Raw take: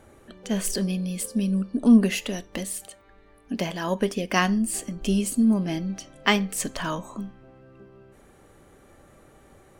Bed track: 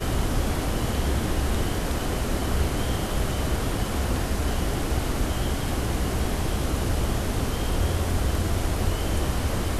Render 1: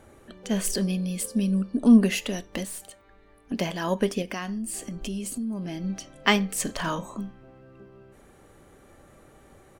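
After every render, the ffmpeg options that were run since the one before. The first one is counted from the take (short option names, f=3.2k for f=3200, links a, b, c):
-filter_complex "[0:a]asettb=1/sr,asplit=3[a][b][c];[a]atrim=end=2.654[d];[b]atrim=start=2.65:end=3.52,asetpts=PTS-STARTPTS,afade=t=in:d=0.004:c=qsin,afade=t=out:st=0.866:d=0.004:c=qsin,aeval=exprs='(tanh(44.7*val(0)+0.4)-tanh(0.4))/44.7':c=same[e];[c]atrim=start=3.516[f];[d][e]acrossfade=d=0.004:c1=hsin:c2=qsin[g];[g][f]acrossfade=d=0.004:c1=qsin:c2=hsin,asettb=1/sr,asplit=3[h][i][j];[h]atrim=end=4.224[k];[i]atrim=start=4.22:end=5.84,asetpts=PTS-STARTPTS,afade=t=in:d=0.004:c=qsin,afade=t=out:st=1.616:d=0.004:c=qsin,acompressor=threshold=-30dB:ratio=4:attack=3.2:release=140:knee=1:detection=peak[l];[j]atrim=start=5.836[m];[k][l]acrossfade=d=0.004:c1=hsin:c2=qsin[n];[n][m]acrossfade=d=0.004:c1=qsin:c2=hsin,asplit=3[o][p][q];[o]afade=t=out:st=6.66:d=0.02[r];[p]asplit=2[s][t];[t]adelay=36,volume=-9dB[u];[s][u]amix=inputs=2:normalize=0,afade=t=in:st=6.66:d=0.02,afade=t=out:st=7.14:d=0.02[v];[q]afade=t=in:st=7.14:d=0.02[w];[r][v][w]amix=inputs=3:normalize=0"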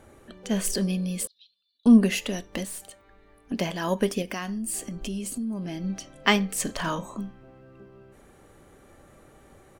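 -filter_complex "[0:a]asettb=1/sr,asplit=3[a][b][c];[a]atrim=end=1.274[d];[b]atrim=start=1.27:end=1.86,asetpts=PTS-STARTPTS,afade=t=in:d=0.004:c=qsin,afade=t=out:st=0.586:d=0.004:c=qsin,asuperpass=centerf=3800:order=4:qfactor=5.6[e];[c]atrim=start=1.856[f];[d][e]acrossfade=d=0.004:c1=hsin:c2=qsin[g];[g][f]acrossfade=d=0.004:c1=qsin:c2=hsin,asettb=1/sr,asplit=3[h][i][j];[h]atrim=end=3.834[k];[i]atrim=start=3.83:end=4.82,asetpts=PTS-STARTPTS,afade=t=in:d=0.004:c=qsin,afade=t=out:st=0.986:d=0.004:c=qsin,highshelf=f=9.8k:g=7[l];[j]atrim=start=4.816[m];[k][l]acrossfade=d=0.004:c1=hsin:c2=qsin[n];[n][m]acrossfade=d=0.004:c1=qsin:c2=hsin"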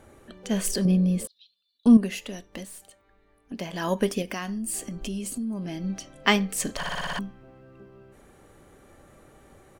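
-filter_complex "[0:a]asettb=1/sr,asplit=3[a][b][c];[a]atrim=end=0.854[d];[b]atrim=start=0.85:end=1.25,asetpts=PTS-STARTPTS,afade=t=in:d=0.004:c=qsin,afade=t=out:st=0.396:d=0.004:c=qsin,tiltshelf=f=1.1k:g=7.5[e];[c]atrim=start=1.246[f];[d][e]acrossfade=d=0.004:c1=hsin:c2=qsin[g];[g][f]acrossfade=d=0.004:c1=qsin:c2=hsin,asplit=10[h][i][j][k][l][m][n][o][p][q];[h]atrim=end=1.972[r];[i]atrim=start=1.968:end=3.732,asetpts=PTS-STARTPTS,volume=-6.5dB[s];[j]atrim=start=3.728:end=6.832[t];[k]atrim=start=6.768:end=6.832[u];[l]atrim=start=6.768:end=6.832[v];[m]atrim=start=6.768:end=6.832[w];[n]atrim=start=6.768:end=6.832[x];[o]atrim=start=6.768:end=6.832[y];[p]atrim=start=6.768:end=6.832[z];[q]atrim=start=7.188[aa];[r][s]acrossfade=d=0.004:c1=hsin:c2=hsin[ab];[ab][t]acrossfade=d=0.004:c1=hsin:c2=hsin[ac];[ac][u]acrossfade=d=0.004:c1=hsin:c2=hsin[ad];[ad][v]acrossfade=d=0.004:c1=hsin:c2=hsin[ae];[ae][w]acrossfade=d=0.004:c1=hsin:c2=hsin[af];[af][x]acrossfade=d=0.004:c1=hsin:c2=hsin[ag];[ag][y]acrossfade=d=0.004:c1=hsin:c2=hsin[ah];[ah][z]acrossfade=d=0.004:c1=hsin:c2=hsin[ai];[ai][aa]acrossfade=d=0.004:c1=hsin:c2=hsin"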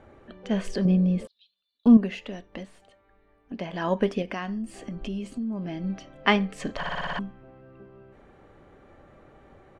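-af "lowpass=3k,equalizer=f=710:w=1.5:g=2"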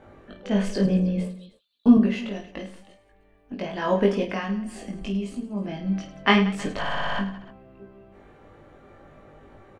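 -filter_complex "[0:a]asplit=2[a][b];[b]adelay=20,volume=-12dB[c];[a][c]amix=inputs=2:normalize=0,aecho=1:1:20|52|103.2|185.1|316.2:0.631|0.398|0.251|0.158|0.1"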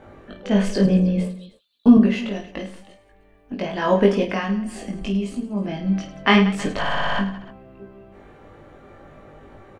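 -af "volume=4.5dB,alimiter=limit=-3dB:level=0:latency=1"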